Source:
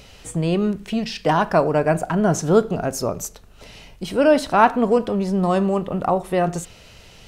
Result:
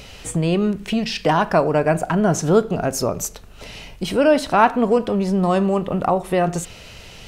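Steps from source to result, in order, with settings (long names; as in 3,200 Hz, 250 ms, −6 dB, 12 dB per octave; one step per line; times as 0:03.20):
parametric band 2,500 Hz +2 dB
in parallel at +2 dB: downward compressor, threshold −26 dBFS, peak gain reduction 16.5 dB
on the sum: level −2 dB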